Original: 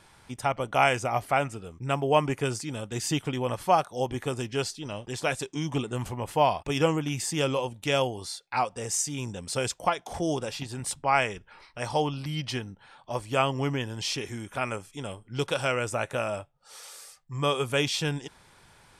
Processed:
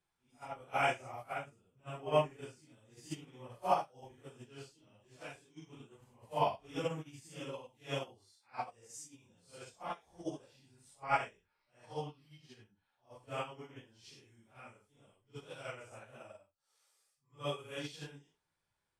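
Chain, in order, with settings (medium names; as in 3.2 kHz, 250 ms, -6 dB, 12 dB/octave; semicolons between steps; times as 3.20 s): phase randomisation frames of 200 ms; upward expansion 2.5:1, over -34 dBFS; trim -5.5 dB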